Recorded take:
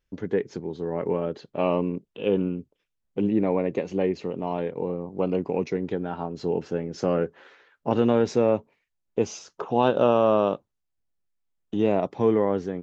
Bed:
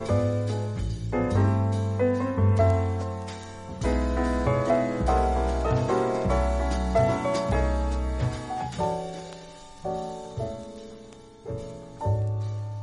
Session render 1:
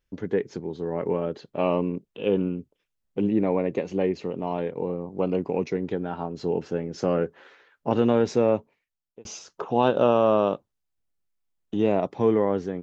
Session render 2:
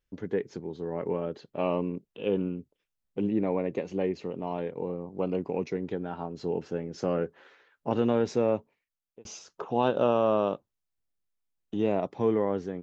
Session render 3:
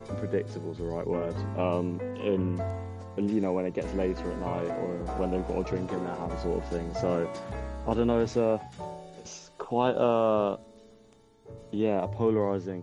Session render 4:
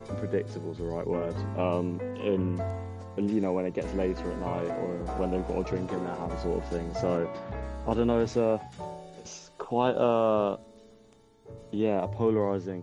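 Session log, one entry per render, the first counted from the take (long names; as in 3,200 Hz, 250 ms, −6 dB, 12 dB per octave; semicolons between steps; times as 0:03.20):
0:08.55–0:09.25: fade out
level −4.5 dB
mix in bed −12 dB
0:07.17–0:07.63: Gaussian smoothing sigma 1.8 samples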